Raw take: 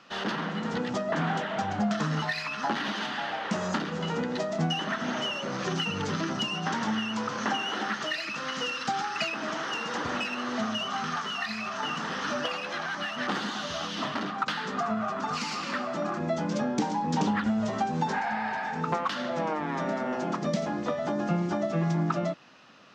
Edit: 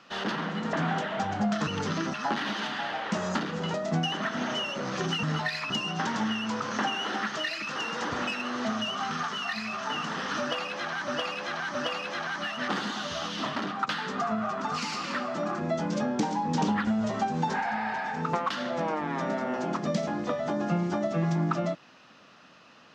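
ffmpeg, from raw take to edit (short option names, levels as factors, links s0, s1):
-filter_complex "[0:a]asplit=10[s0][s1][s2][s3][s4][s5][s6][s7][s8][s9];[s0]atrim=end=0.732[s10];[s1]atrim=start=1.118:end=2.062[s11];[s2]atrim=start=5.898:end=6.372[s12];[s3]atrim=start=2.528:end=4.132[s13];[s4]atrim=start=4.408:end=5.902[s14];[s5]atrim=start=2.058:end=2.532[s15];[s6]atrim=start=6.368:end=8.432[s16];[s7]atrim=start=9.688:end=13.012[s17];[s8]atrim=start=12.338:end=13.012[s18];[s9]atrim=start=12.338[s19];[s10][s11]acrossfade=d=0.004:c1=hsin:c2=hsin[s20];[s20][s12]acrossfade=d=0.004:c1=hsin:c2=hsin[s21];[s21][s13]acrossfade=d=0.004:c1=hsin:c2=hsin[s22];[s22][s14]acrossfade=d=0.004:c1=hsin:c2=hsin[s23];[s23][s15]acrossfade=d=0.004:c1=hsin:c2=hsin[s24];[s24][s16]acrossfade=d=0.004:c1=hsin:c2=hsin[s25];[s25][s17]acrossfade=d=0.004:c1=hsin:c2=hsin[s26];[s26][s18]acrossfade=d=0.004:c1=hsin:c2=hsin[s27];[s27][s19]acrossfade=d=0.004:c1=hsin:c2=hsin"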